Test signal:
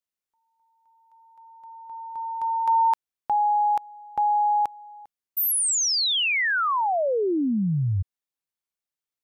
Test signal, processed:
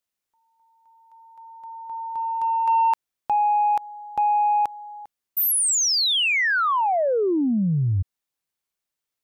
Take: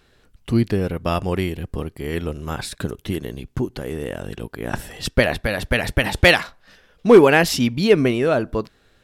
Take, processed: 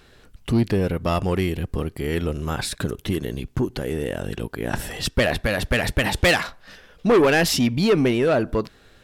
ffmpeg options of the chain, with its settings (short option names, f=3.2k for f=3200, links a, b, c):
-filter_complex "[0:a]asplit=2[a][b];[b]acompressor=threshold=-29dB:ratio=6:attack=0.2:release=70:detection=rms,volume=-1dB[c];[a][c]amix=inputs=2:normalize=0,asoftclip=type=tanh:threshold=-12dB"